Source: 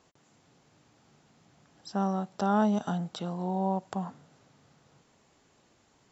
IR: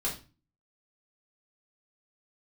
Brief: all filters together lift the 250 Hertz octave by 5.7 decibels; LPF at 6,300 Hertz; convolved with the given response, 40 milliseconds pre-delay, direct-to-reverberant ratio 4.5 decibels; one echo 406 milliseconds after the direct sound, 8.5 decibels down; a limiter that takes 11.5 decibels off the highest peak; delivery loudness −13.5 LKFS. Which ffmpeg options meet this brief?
-filter_complex "[0:a]lowpass=6300,equalizer=frequency=250:width_type=o:gain=8,alimiter=limit=-21.5dB:level=0:latency=1,aecho=1:1:406:0.376,asplit=2[link_01][link_02];[1:a]atrim=start_sample=2205,adelay=40[link_03];[link_02][link_03]afir=irnorm=-1:irlink=0,volume=-9.5dB[link_04];[link_01][link_04]amix=inputs=2:normalize=0,volume=15.5dB"

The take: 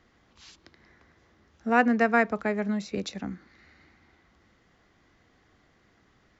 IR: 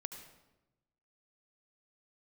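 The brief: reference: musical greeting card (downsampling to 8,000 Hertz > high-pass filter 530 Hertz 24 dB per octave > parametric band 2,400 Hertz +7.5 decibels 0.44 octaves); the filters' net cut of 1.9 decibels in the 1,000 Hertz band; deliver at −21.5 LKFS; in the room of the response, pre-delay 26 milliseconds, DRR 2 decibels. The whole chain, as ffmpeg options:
-filter_complex "[0:a]equalizer=frequency=1000:width_type=o:gain=-3,asplit=2[link_01][link_02];[1:a]atrim=start_sample=2205,adelay=26[link_03];[link_02][link_03]afir=irnorm=-1:irlink=0,volume=0.5dB[link_04];[link_01][link_04]amix=inputs=2:normalize=0,aresample=8000,aresample=44100,highpass=frequency=530:width=0.5412,highpass=frequency=530:width=1.3066,equalizer=frequency=2400:width_type=o:width=0.44:gain=7.5,volume=5dB"

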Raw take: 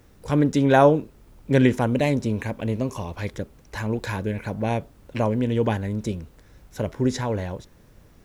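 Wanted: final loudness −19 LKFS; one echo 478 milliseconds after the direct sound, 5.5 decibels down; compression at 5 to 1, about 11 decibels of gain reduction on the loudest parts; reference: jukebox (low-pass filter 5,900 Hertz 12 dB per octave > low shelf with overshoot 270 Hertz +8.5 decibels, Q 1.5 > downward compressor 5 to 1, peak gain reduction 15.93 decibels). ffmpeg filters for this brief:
ffmpeg -i in.wav -af "acompressor=threshold=-23dB:ratio=5,lowpass=5900,lowshelf=frequency=270:width_type=q:width=1.5:gain=8.5,aecho=1:1:478:0.531,acompressor=threshold=-32dB:ratio=5,volume=16dB" out.wav

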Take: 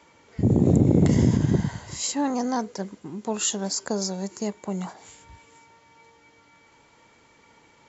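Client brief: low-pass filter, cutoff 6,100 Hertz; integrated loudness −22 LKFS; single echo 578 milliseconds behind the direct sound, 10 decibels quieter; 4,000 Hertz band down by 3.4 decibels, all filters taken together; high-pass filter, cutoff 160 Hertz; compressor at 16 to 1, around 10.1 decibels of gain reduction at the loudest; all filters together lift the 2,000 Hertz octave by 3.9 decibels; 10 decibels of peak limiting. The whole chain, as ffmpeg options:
ffmpeg -i in.wav -af "highpass=160,lowpass=6100,equalizer=frequency=2000:width_type=o:gain=6,equalizer=frequency=4000:width_type=o:gain=-5,acompressor=threshold=-25dB:ratio=16,alimiter=limit=-23.5dB:level=0:latency=1,aecho=1:1:578:0.316,volume=12.5dB" out.wav

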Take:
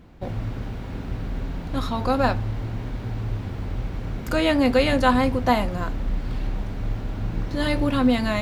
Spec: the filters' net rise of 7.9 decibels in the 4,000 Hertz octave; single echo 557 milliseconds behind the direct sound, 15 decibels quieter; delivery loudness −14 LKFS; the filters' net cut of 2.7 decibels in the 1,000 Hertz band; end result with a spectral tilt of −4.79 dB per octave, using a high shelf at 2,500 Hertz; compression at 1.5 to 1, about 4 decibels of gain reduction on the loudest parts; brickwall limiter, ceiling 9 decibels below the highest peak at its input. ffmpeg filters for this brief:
ffmpeg -i in.wav -af "equalizer=frequency=1000:width_type=o:gain=-5,highshelf=frequency=2500:gain=8,equalizer=frequency=4000:width_type=o:gain=3.5,acompressor=threshold=-25dB:ratio=1.5,alimiter=limit=-19dB:level=0:latency=1,aecho=1:1:557:0.178,volume=16dB" out.wav

